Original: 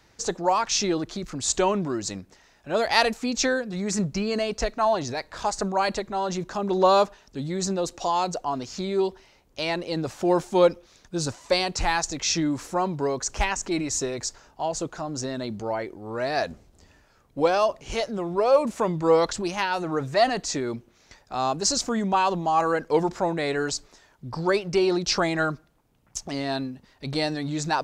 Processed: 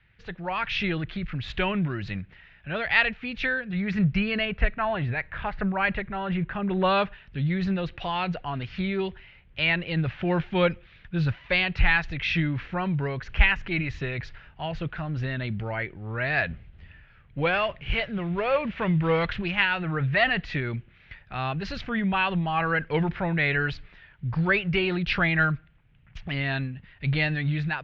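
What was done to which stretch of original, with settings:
0:04.45–0:06.84: low-pass filter 2,500 Hz
0:17.54–0:19.44: variable-slope delta modulation 64 kbit/s
whole clip: flat-topped bell 520 Hz −15.5 dB 2.7 octaves; automatic gain control gain up to 9.5 dB; Butterworth low-pass 3,000 Hz 36 dB per octave

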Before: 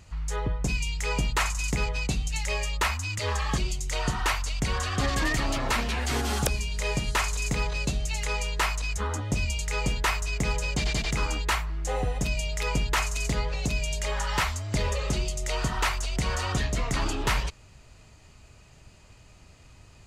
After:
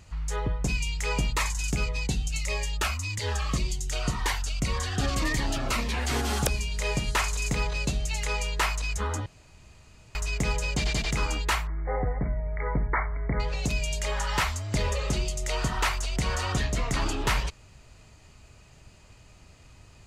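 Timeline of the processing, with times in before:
0:01.35–0:05.94: phaser whose notches keep moving one way falling 1.8 Hz
0:09.26–0:10.15: fill with room tone
0:11.67–0:13.40: linear-phase brick-wall low-pass 2,300 Hz

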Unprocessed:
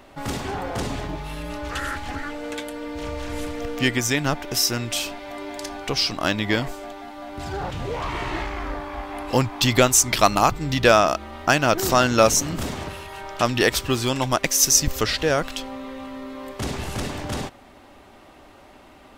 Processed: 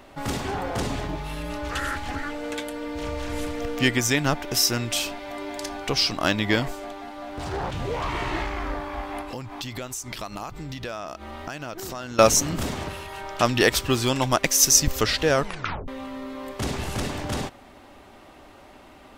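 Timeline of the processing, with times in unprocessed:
0:06.80–0:07.74: highs frequency-modulated by the lows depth 0.41 ms
0:09.21–0:12.19: downward compressor 5 to 1, threshold −32 dBFS
0:15.35: tape stop 0.53 s

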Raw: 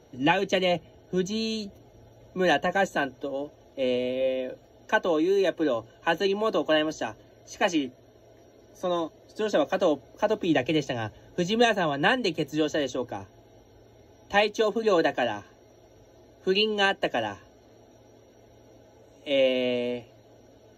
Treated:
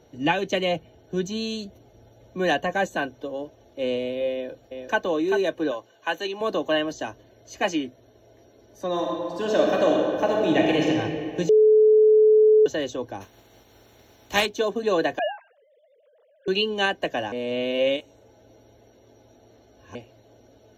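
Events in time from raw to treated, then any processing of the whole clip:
0:04.32–0:05.01: delay throw 390 ms, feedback 15%, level −6 dB
0:05.71–0:06.41: high-pass filter 650 Hz 6 dB per octave
0:08.88–0:10.87: thrown reverb, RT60 2.6 s, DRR −2 dB
0:11.49–0:12.66: beep over 431 Hz −12 dBFS
0:13.20–0:14.45: compressing power law on the bin magnitudes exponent 0.58
0:15.19–0:16.48: three sine waves on the formant tracks
0:17.32–0:19.95: reverse

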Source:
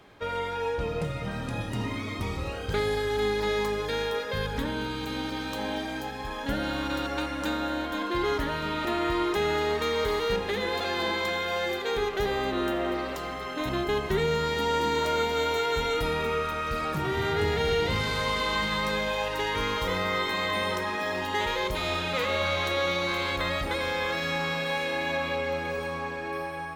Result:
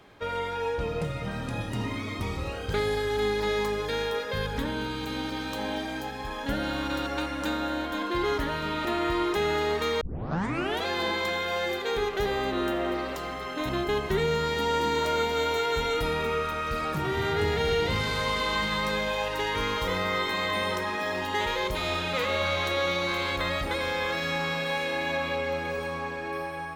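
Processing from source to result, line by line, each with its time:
0:10.01: tape start 0.85 s

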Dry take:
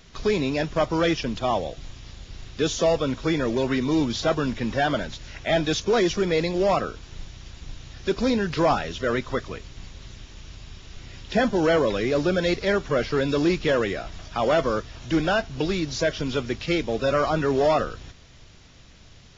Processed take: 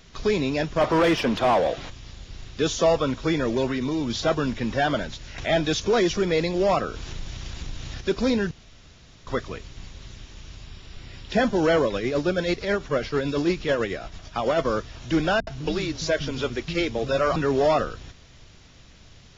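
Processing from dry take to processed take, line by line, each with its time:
0:00.81–0:01.90: mid-hump overdrive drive 23 dB, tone 1,300 Hz, clips at −11.5 dBFS
0:02.65–0:03.11: dynamic equaliser 1,100 Hz, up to +5 dB, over −39 dBFS, Q 1.5
0:03.67–0:04.10: downward compressor, threshold −22 dBFS
0:05.38–0:08.01: upward compression, threshold −24 dBFS
0:08.51–0:09.27: fill with room tone
0:10.66–0:11.30: notch filter 6,400 Hz, Q 6.1
0:11.85–0:14.65: amplitude tremolo 9.1 Hz, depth 47%
0:15.40–0:17.36: multiband delay without the direct sound lows, highs 70 ms, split 230 Hz

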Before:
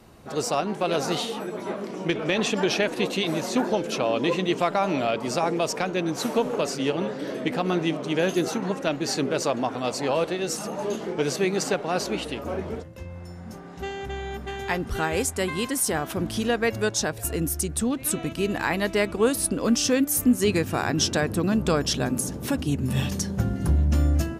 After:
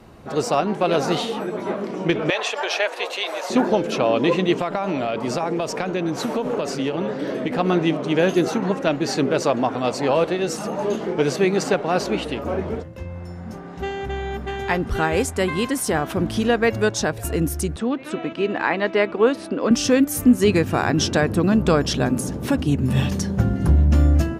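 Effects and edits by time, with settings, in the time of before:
0:02.30–0:03.50: high-pass filter 560 Hz 24 dB per octave
0:04.58–0:07.59: downward compressor, threshold −24 dBFS
0:17.76–0:19.71: band-pass filter 270–3,600 Hz
whole clip: high-shelf EQ 4,500 Hz −9.5 dB; level +5.5 dB

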